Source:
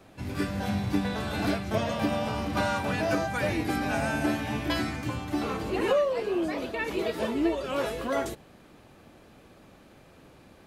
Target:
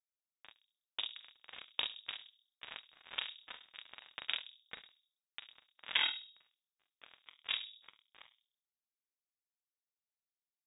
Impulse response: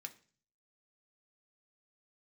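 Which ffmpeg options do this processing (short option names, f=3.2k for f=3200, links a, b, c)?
-filter_complex "[0:a]acrossover=split=190|1100[a][b][c];[b]adelay=40[d];[a]adelay=400[e];[e][d][c]amix=inputs=3:normalize=0,acrusher=bits=2:mix=0:aa=0.5,asplit=2[f][g];[g]adelay=39,volume=-4dB[h];[f][h]amix=inputs=2:normalize=0,asplit=2[i][j];[j]adelay=65,lowpass=f=820:p=1,volume=-6dB,asplit=2[k][l];[l]adelay=65,lowpass=f=820:p=1,volume=0.47,asplit=2[m][n];[n]adelay=65,lowpass=f=820:p=1,volume=0.47,asplit=2[o][p];[p]adelay=65,lowpass=f=820:p=1,volume=0.47,asplit=2[q][r];[r]adelay=65,lowpass=f=820:p=1,volume=0.47,asplit=2[s][t];[t]adelay=65,lowpass=f=820:p=1,volume=0.47[u];[k][m][o][q][s][u]amix=inputs=6:normalize=0[v];[i][v]amix=inputs=2:normalize=0,flanger=delay=6.6:depth=3:regen=-38:speed=0.68:shape=sinusoidal,aeval=exprs='val(0)*sin(2*PI*20*n/s)':c=same,lowpass=f=3.2k:t=q:w=0.5098,lowpass=f=3.2k:t=q:w=0.6013,lowpass=f=3.2k:t=q:w=0.9,lowpass=f=3.2k:t=q:w=2.563,afreqshift=-3800,volume=10dB"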